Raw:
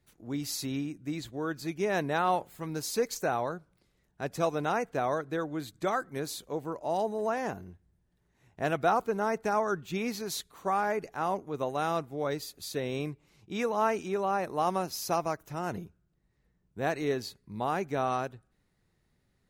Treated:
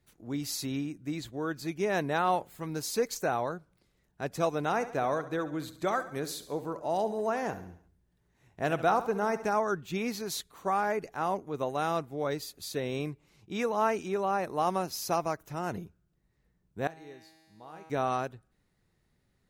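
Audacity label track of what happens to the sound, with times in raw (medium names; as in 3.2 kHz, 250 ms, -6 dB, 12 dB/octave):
4.650000	9.480000	feedback delay 69 ms, feedback 50%, level -14 dB
16.870000	17.900000	feedback comb 160 Hz, decay 1.9 s, mix 90%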